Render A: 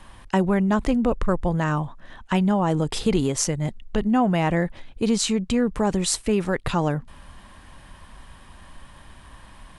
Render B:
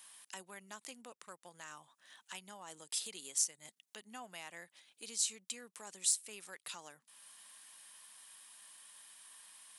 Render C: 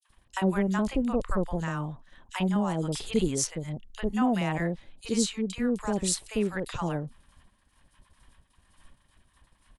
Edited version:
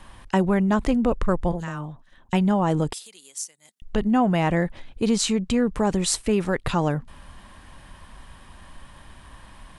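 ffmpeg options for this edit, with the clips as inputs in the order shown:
-filter_complex "[0:a]asplit=3[a][b][c];[a]atrim=end=1.522[d];[2:a]atrim=start=1.518:end=2.332[e];[b]atrim=start=2.328:end=2.932[f];[1:a]atrim=start=2.928:end=3.822[g];[c]atrim=start=3.818[h];[d][e]acrossfade=d=0.004:c1=hsin:c2=hsin[i];[i][f]acrossfade=d=0.004:c1=hsin:c2=hsin[j];[j][g]acrossfade=d=0.004:c1=hsin:c2=hsin[k];[k][h]acrossfade=d=0.004:c1=hsin:c2=hsin"

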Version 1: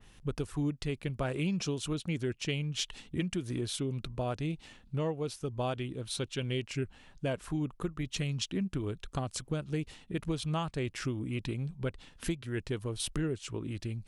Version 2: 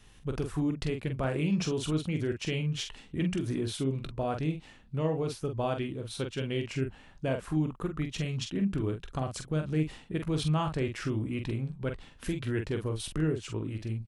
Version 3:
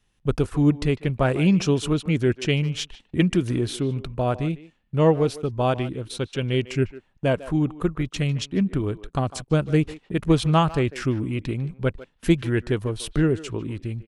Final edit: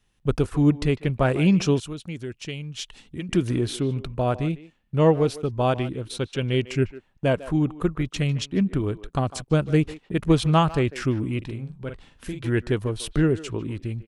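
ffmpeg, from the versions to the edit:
-filter_complex "[2:a]asplit=3[a][b][c];[a]atrim=end=1.802[d];[0:a]atrim=start=1.798:end=3.292[e];[b]atrim=start=3.288:end=11.422[f];[1:a]atrim=start=11.418:end=12.442[g];[c]atrim=start=12.438[h];[d][e]acrossfade=d=0.004:c1=hsin:c2=hsin[i];[i][f]acrossfade=d=0.004:c1=hsin:c2=hsin[j];[j][g]acrossfade=d=0.004:c1=hsin:c2=hsin[k];[k][h]acrossfade=d=0.004:c1=hsin:c2=hsin"

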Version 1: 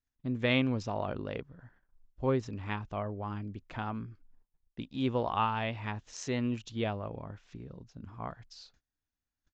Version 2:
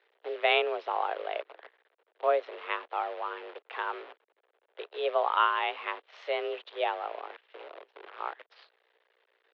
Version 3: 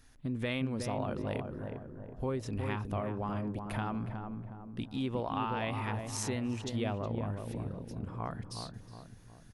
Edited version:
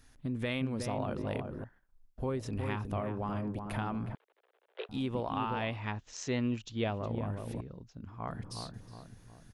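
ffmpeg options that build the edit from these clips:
-filter_complex "[0:a]asplit=3[a][b][c];[2:a]asplit=5[d][e][f][g][h];[d]atrim=end=1.642[i];[a]atrim=start=1.638:end=2.182[j];[e]atrim=start=2.178:end=4.152[k];[1:a]atrim=start=4.148:end=4.892[l];[f]atrim=start=4.888:end=5.79[m];[b]atrim=start=5.55:end=7.08[n];[g]atrim=start=6.84:end=7.612[o];[c]atrim=start=7.608:end=8.282[p];[h]atrim=start=8.278[q];[i][j]acrossfade=d=0.004:c1=hsin:c2=hsin[r];[r][k]acrossfade=d=0.004:c1=hsin:c2=hsin[s];[s][l]acrossfade=d=0.004:c1=hsin:c2=hsin[t];[t][m]acrossfade=d=0.004:c1=hsin:c2=hsin[u];[u][n]acrossfade=d=0.24:c1=tri:c2=tri[v];[v][o]acrossfade=d=0.24:c1=tri:c2=tri[w];[w][p]acrossfade=d=0.004:c1=hsin:c2=hsin[x];[x][q]acrossfade=d=0.004:c1=hsin:c2=hsin"

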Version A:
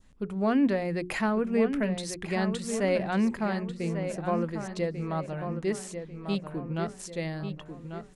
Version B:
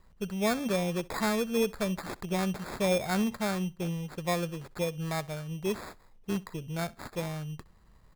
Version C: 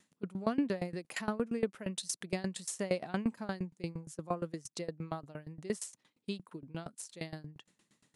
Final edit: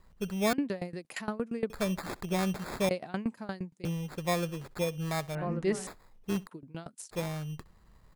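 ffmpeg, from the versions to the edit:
-filter_complex "[2:a]asplit=3[a][b][c];[1:a]asplit=5[d][e][f][g][h];[d]atrim=end=0.532[i];[a]atrim=start=0.528:end=1.702[j];[e]atrim=start=1.698:end=2.892[k];[b]atrim=start=2.888:end=3.852[l];[f]atrim=start=3.848:end=5.352[m];[0:a]atrim=start=5.348:end=5.872[n];[g]atrim=start=5.868:end=6.472[o];[c]atrim=start=6.468:end=7.112[p];[h]atrim=start=7.108[q];[i][j]acrossfade=d=0.004:c1=hsin:c2=hsin[r];[r][k]acrossfade=d=0.004:c1=hsin:c2=hsin[s];[s][l]acrossfade=d=0.004:c1=hsin:c2=hsin[t];[t][m]acrossfade=d=0.004:c1=hsin:c2=hsin[u];[u][n]acrossfade=d=0.004:c1=hsin:c2=hsin[v];[v][o]acrossfade=d=0.004:c1=hsin:c2=hsin[w];[w][p]acrossfade=d=0.004:c1=hsin:c2=hsin[x];[x][q]acrossfade=d=0.004:c1=hsin:c2=hsin"

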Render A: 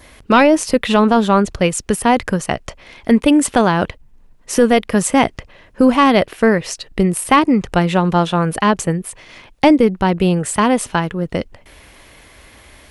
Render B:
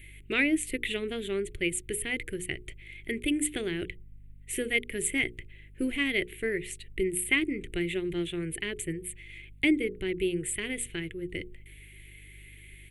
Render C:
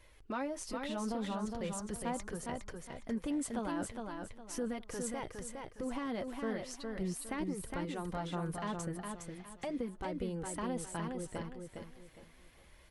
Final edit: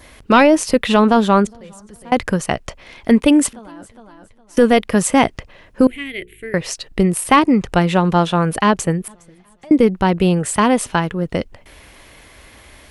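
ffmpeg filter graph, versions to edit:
-filter_complex "[2:a]asplit=3[a][b][c];[0:a]asplit=5[d][e][f][g][h];[d]atrim=end=1.472[i];[a]atrim=start=1.468:end=2.122[j];[e]atrim=start=2.118:end=3.532[k];[b]atrim=start=3.528:end=4.572[l];[f]atrim=start=4.568:end=5.872[m];[1:a]atrim=start=5.868:end=6.542[n];[g]atrim=start=6.538:end=9.082[o];[c]atrim=start=9.078:end=9.712[p];[h]atrim=start=9.708[q];[i][j]acrossfade=d=0.004:c1=hsin:c2=hsin[r];[r][k]acrossfade=d=0.004:c1=hsin:c2=hsin[s];[s][l]acrossfade=d=0.004:c1=hsin:c2=hsin[t];[t][m]acrossfade=d=0.004:c1=hsin:c2=hsin[u];[u][n]acrossfade=d=0.004:c1=hsin:c2=hsin[v];[v][o]acrossfade=d=0.004:c1=hsin:c2=hsin[w];[w][p]acrossfade=d=0.004:c1=hsin:c2=hsin[x];[x][q]acrossfade=d=0.004:c1=hsin:c2=hsin"

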